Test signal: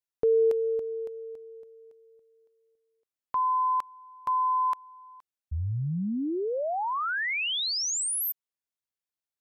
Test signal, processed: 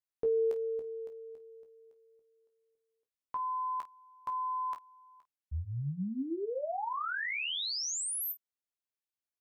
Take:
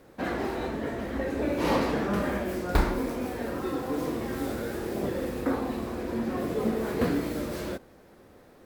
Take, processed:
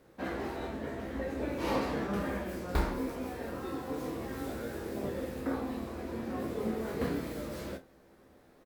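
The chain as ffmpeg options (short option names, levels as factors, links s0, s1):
-af "aecho=1:1:15|27|50:0.473|0.335|0.168,volume=0.422"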